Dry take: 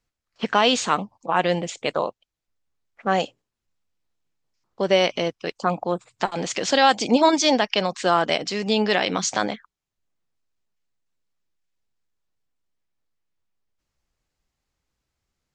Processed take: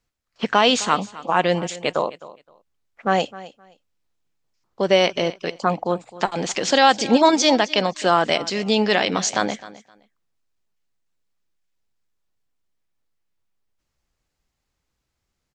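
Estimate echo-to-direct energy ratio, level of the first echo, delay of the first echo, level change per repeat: -18.0 dB, -18.0 dB, 260 ms, -14.5 dB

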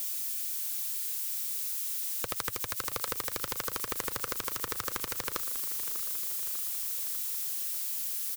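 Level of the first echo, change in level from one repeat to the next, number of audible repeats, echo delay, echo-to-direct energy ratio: -13.0 dB, -4.5 dB, 5, 596 ms, -11.0 dB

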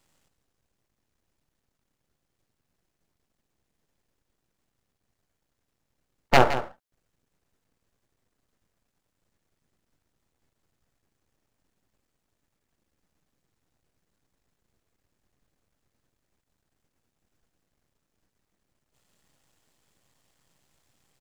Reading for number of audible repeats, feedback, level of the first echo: 1, no regular repeats, -12.0 dB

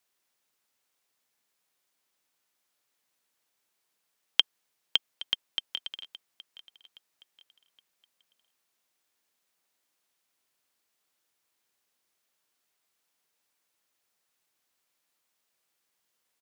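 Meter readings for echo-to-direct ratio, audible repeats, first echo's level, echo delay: -17.5 dB, 2, -18.0 dB, 819 ms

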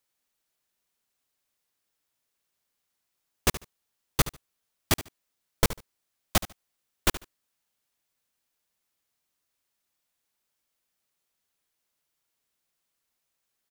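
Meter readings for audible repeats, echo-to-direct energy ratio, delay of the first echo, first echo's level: 2, -14.5 dB, 73 ms, -14.5 dB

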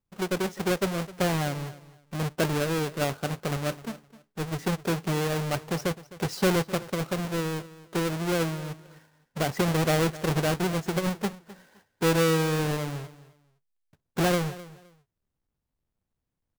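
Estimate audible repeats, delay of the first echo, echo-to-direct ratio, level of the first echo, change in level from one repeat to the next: 2, 258 ms, -18.0 dB, -18.0 dB, -13.0 dB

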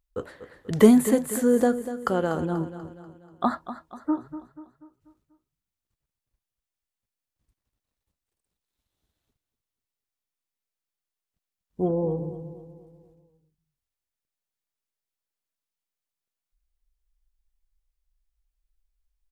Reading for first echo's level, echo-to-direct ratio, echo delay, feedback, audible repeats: -12.5 dB, -11.5 dB, 243 ms, 47%, 4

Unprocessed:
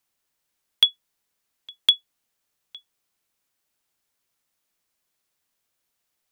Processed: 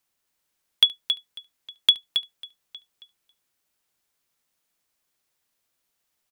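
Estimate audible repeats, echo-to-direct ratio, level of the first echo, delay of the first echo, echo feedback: 4, -7.0 dB, -22.5 dB, 72 ms, no regular repeats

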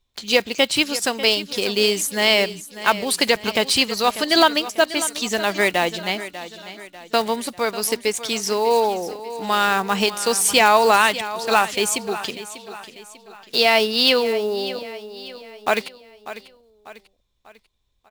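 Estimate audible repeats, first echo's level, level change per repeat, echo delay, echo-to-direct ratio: 3, -14.0 dB, -7.0 dB, 594 ms, -13.0 dB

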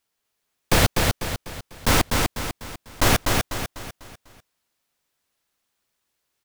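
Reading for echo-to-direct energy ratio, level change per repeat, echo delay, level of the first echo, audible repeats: -2.5 dB, -7.5 dB, 248 ms, -3.5 dB, 5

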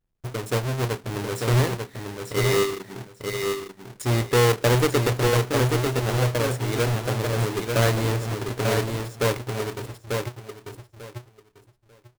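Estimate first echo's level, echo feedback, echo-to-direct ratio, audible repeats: -4.5 dB, 19%, -4.5 dB, 3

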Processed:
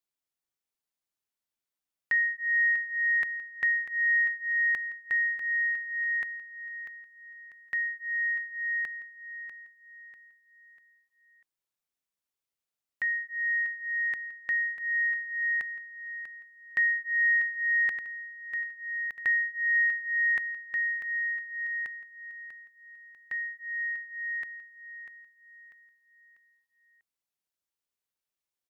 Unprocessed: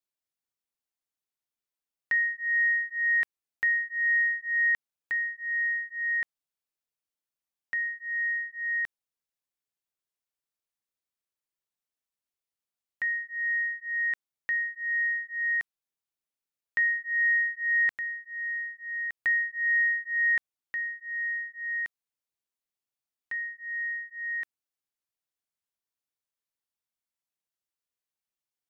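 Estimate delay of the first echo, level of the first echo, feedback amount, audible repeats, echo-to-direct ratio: 644 ms, -10.5 dB, 40%, 4, -9.5 dB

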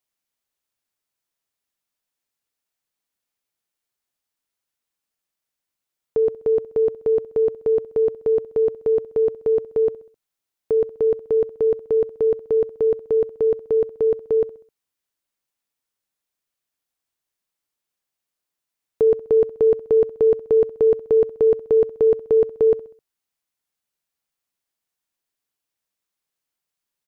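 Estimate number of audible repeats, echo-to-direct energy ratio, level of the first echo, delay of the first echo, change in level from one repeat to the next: 3, -18.0 dB, -19.0 dB, 65 ms, -7.0 dB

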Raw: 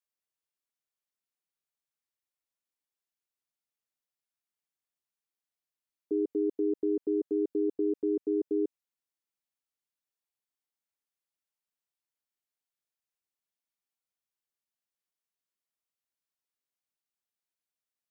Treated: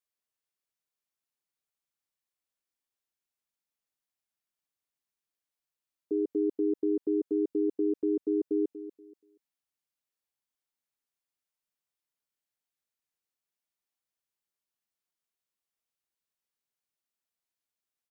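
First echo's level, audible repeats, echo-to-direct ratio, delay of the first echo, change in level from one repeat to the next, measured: -13.5 dB, 2, -13.0 dB, 239 ms, -11.5 dB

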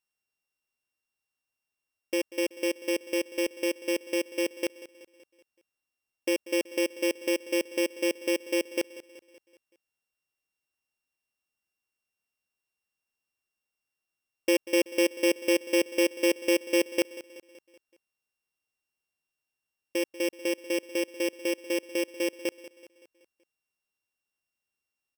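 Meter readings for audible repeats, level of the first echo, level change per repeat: 4, -17.0 dB, -5.5 dB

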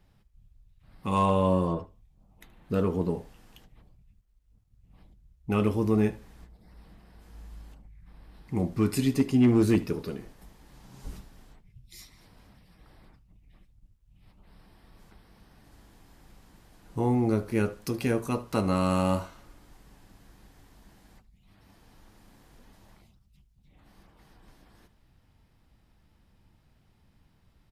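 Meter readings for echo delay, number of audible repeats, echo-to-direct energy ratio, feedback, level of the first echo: 75 ms, 2, -20.0 dB, 19%, -20.0 dB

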